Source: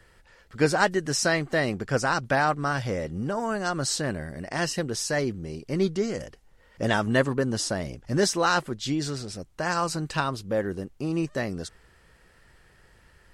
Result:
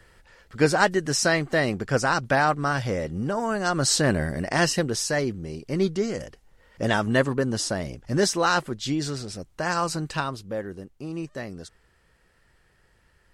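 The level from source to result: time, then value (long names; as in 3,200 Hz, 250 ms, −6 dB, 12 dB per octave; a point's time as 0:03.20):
0:03.55 +2 dB
0:04.23 +9 dB
0:05.21 +1 dB
0:09.99 +1 dB
0:10.68 −5.5 dB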